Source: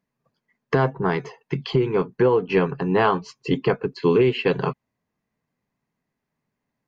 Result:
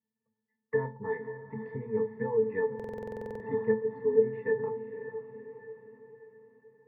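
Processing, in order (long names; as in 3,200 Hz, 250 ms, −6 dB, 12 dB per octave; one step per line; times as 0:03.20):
0:03.84–0:04.33: expanding power law on the bin magnitudes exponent 1.5
high shelf with overshoot 2,700 Hz −10 dB, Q 3
harmonic generator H 3 −33 dB, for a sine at −6 dBFS
resonances in every octave A, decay 0.22 s
feedback delay with all-pass diffusion 518 ms, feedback 50%, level −10.5 dB
on a send at −7 dB: convolution reverb RT60 0.35 s, pre-delay 4 ms
on the sum: buffer that repeats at 0:02.75, samples 2,048, times 13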